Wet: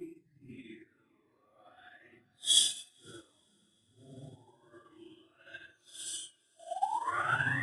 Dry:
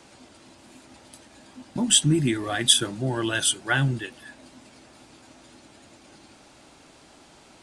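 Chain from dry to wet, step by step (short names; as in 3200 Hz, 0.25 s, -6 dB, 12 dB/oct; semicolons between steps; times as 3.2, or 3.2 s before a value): reverb removal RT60 1.8 s; painted sound rise, 3.59–3.96, 630–4200 Hz -19 dBFS; Paulstretch 4.6×, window 0.05 s, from 2.15; on a send: diffused feedback echo 0.472 s, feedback 59%, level -14.5 dB; on the sum: upward expander 2.5:1, over -31 dBFS; gain -8 dB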